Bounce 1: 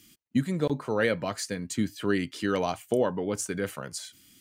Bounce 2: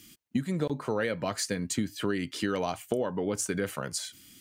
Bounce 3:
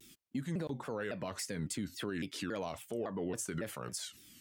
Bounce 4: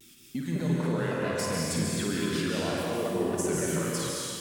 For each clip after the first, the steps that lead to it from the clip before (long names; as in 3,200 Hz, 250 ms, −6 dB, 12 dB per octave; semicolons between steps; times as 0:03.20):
downward compressor, threshold −29 dBFS, peak gain reduction 9.5 dB; level +3.5 dB
brickwall limiter −24 dBFS, peak gain reduction 9.5 dB; pitch modulation by a square or saw wave saw down 3.6 Hz, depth 250 cents; level −4.5 dB
on a send: flutter between parallel walls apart 9.2 metres, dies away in 0.56 s; on the sum: dense smooth reverb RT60 2.2 s, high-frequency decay 0.95×, pre-delay 120 ms, DRR −3.5 dB; level +3.5 dB